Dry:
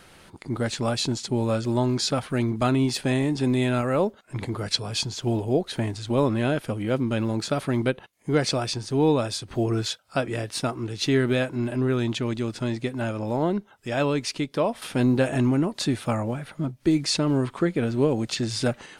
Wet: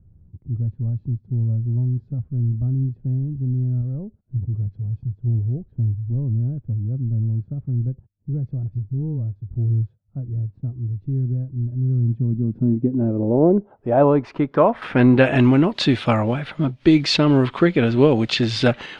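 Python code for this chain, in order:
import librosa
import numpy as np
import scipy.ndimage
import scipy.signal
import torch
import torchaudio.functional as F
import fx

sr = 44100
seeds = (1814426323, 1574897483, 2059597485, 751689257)

y = fx.filter_sweep_lowpass(x, sr, from_hz=100.0, to_hz=3300.0, start_s=11.79, end_s=15.52, q=1.6)
y = fx.dispersion(y, sr, late='highs', ms=46.0, hz=690.0, at=(8.63, 9.36))
y = F.gain(torch.from_numpy(y), 7.0).numpy()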